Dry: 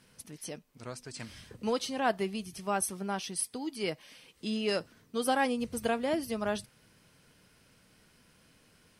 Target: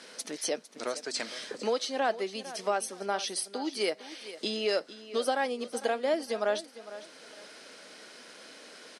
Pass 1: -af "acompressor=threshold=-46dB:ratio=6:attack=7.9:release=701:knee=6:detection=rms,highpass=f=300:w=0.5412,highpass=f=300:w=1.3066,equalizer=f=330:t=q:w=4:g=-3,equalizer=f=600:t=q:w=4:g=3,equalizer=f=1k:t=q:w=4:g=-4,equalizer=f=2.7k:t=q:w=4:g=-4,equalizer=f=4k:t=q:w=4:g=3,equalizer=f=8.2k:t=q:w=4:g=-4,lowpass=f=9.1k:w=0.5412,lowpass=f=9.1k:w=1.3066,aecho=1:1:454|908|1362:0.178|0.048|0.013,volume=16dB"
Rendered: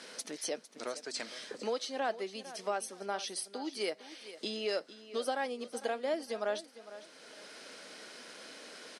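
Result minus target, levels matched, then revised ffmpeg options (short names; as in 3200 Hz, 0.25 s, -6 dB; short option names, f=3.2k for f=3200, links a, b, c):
compressor: peak gain reduction +5.5 dB
-af "acompressor=threshold=-39.5dB:ratio=6:attack=7.9:release=701:knee=6:detection=rms,highpass=f=300:w=0.5412,highpass=f=300:w=1.3066,equalizer=f=330:t=q:w=4:g=-3,equalizer=f=600:t=q:w=4:g=3,equalizer=f=1k:t=q:w=4:g=-4,equalizer=f=2.7k:t=q:w=4:g=-4,equalizer=f=4k:t=q:w=4:g=3,equalizer=f=8.2k:t=q:w=4:g=-4,lowpass=f=9.1k:w=0.5412,lowpass=f=9.1k:w=1.3066,aecho=1:1:454|908|1362:0.178|0.048|0.013,volume=16dB"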